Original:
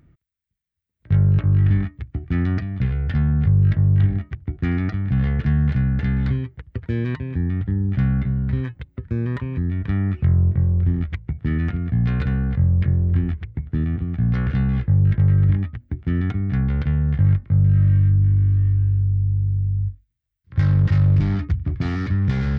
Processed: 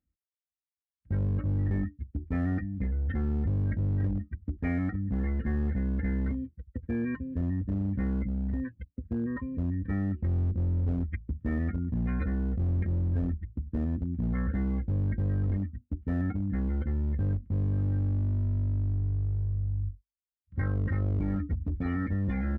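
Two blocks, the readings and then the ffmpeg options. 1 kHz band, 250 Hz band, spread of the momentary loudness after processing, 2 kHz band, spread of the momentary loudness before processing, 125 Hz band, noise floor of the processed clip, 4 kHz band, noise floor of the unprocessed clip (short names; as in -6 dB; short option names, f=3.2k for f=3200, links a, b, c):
-7.0 dB, -6.5 dB, 6 LU, -8.5 dB, 10 LU, -11.5 dB, under -85 dBFS, n/a, -76 dBFS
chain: -filter_complex "[0:a]afftdn=nr=26:nf=-33,aecho=1:1:3.8:0.85,acrossover=split=560[a][b];[a]asoftclip=type=hard:threshold=-17.5dB[c];[c][b]amix=inputs=2:normalize=0,volume=-7dB"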